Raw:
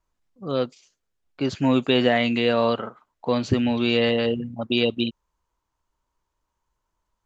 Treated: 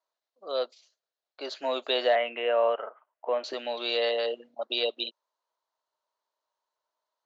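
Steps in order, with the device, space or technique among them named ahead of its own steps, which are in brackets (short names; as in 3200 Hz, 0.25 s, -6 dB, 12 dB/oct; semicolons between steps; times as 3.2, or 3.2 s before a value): 2.15–3.44 steep low-pass 3000 Hz 72 dB/oct; phone speaker on a table (speaker cabinet 450–6500 Hz, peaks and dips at 630 Hz +8 dB, 2400 Hz -4 dB, 4100 Hz +8 dB); gain -5.5 dB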